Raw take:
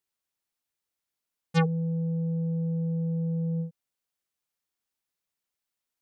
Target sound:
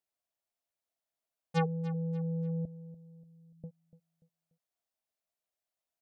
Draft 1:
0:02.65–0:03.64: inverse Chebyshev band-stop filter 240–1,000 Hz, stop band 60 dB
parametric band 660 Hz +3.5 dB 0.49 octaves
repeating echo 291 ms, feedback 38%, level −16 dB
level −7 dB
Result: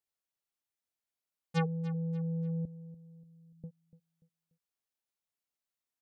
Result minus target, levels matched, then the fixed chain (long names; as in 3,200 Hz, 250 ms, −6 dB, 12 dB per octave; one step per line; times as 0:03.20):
500 Hz band −2.5 dB
0:02.65–0:03.64: inverse Chebyshev band-stop filter 240–1,000 Hz, stop band 60 dB
parametric band 660 Hz +14.5 dB 0.49 octaves
repeating echo 291 ms, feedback 38%, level −16 dB
level −7 dB